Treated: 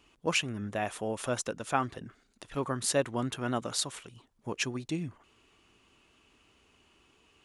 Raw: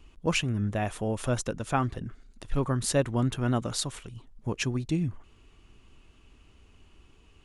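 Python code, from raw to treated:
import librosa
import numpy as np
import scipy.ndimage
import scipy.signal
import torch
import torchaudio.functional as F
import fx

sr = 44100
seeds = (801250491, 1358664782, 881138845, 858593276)

y = fx.highpass(x, sr, hz=390.0, slope=6)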